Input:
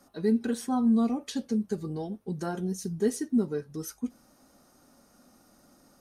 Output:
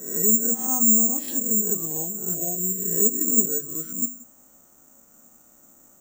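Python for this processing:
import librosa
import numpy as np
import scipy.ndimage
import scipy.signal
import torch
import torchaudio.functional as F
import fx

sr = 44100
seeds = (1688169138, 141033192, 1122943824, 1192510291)

p1 = fx.spec_swells(x, sr, rise_s=0.72)
p2 = fx.hum_notches(p1, sr, base_hz=50, count=5)
p3 = fx.env_lowpass_down(p2, sr, base_hz=650.0, full_db=-21.0)
p4 = fx.spec_erase(p3, sr, start_s=2.34, length_s=0.29, low_hz=750.0, high_hz=10000.0)
p5 = (np.kron(scipy.signal.resample_poly(p4, 1, 6), np.eye(6)[0]) * 6)[:len(p4)]
p6 = p5 + fx.echo_feedback(p5, sr, ms=178, feedback_pct=16, wet_db=-22.0, dry=0)
y = p6 * librosa.db_to_amplitude(-2.5)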